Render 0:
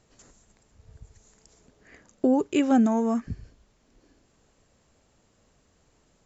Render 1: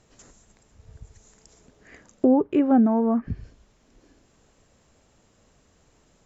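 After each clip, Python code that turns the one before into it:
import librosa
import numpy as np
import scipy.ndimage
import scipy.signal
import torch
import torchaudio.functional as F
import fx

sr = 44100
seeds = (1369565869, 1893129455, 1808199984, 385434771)

y = fx.notch(x, sr, hz=4500.0, q=24.0)
y = fx.env_lowpass_down(y, sr, base_hz=1200.0, full_db=-22.5)
y = fx.rider(y, sr, range_db=10, speed_s=0.5)
y = y * librosa.db_to_amplitude(4.0)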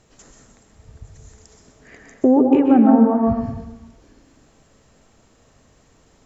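y = fx.rev_plate(x, sr, seeds[0], rt60_s=1.1, hf_ratio=0.55, predelay_ms=115, drr_db=1.5)
y = y * librosa.db_to_amplitude(3.5)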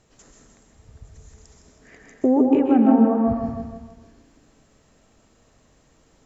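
y = fx.echo_feedback(x, sr, ms=160, feedback_pct=43, wet_db=-7.5)
y = y * librosa.db_to_amplitude(-4.0)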